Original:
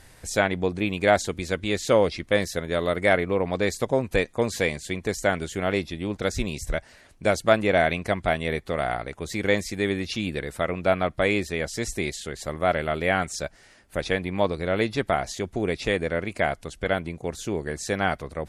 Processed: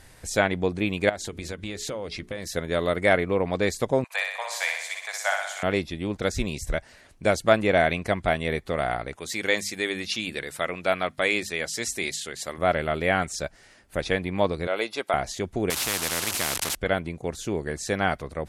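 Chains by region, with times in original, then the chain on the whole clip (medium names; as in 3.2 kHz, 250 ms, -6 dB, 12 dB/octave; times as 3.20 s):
1.09–2.47 s: compression 12:1, threshold -28 dBFS + hum notches 60/120/180/240/300/360/420 Hz
4.04–5.63 s: steep high-pass 670 Hz 48 dB/octave + flutter echo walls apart 10.5 m, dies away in 0.82 s
9.16–12.58 s: high-pass 160 Hz 6 dB/octave + tilt shelf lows -4.5 dB, about 1.3 kHz + hum notches 50/100/150/200/250 Hz
14.67–15.14 s: high-pass 490 Hz + treble shelf 11 kHz +5 dB + band-stop 1.8 kHz, Q 7.4
15.70–16.75 s: one-bit delta coder 64 kbps, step -32.5 dBFS + high-pass 95 Hz + spectrum-flattening compressor 4:1
whole clip: none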